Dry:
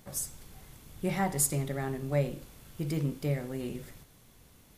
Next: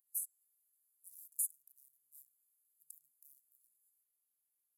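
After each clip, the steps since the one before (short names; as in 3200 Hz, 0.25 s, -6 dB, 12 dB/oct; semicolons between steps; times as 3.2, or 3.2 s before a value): Wiener smoothing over 15 samples; inverse Chebyshev high-pass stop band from 2100 Hz, stop band 80 dB; compressor 3:1, threshold -45 dBFS, peak gain reduction 13 dB; gain +8 dB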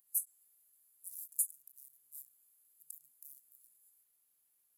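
limiter -28 dBFS, peak gain reduction 4.5 dB; ending taper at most 380 dB/s; gain +9 dB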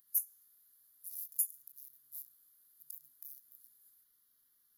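fixed phaser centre 2500 Hz, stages 6; on a send at -11 dB: reverb RT60 0.70 s, pre-delay 3 ms; on the sum: gain +7.5 dB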